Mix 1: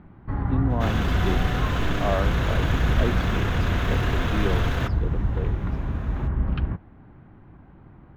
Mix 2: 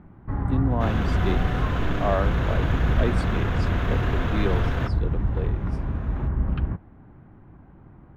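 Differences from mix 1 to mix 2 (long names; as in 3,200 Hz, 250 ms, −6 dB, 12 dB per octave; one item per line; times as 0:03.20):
speech: remove head-to-tape spacing loss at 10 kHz 29 dB
master: add high-shelf EQ 3,100 Hz −10 dB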